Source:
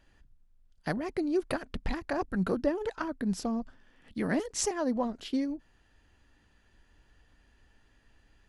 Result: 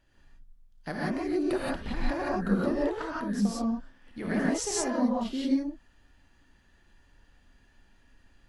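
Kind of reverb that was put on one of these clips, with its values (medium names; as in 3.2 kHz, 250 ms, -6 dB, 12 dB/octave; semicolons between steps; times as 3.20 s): gated-style reverb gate 200 ms rising, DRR -5.5 dB; trim -4.5 dB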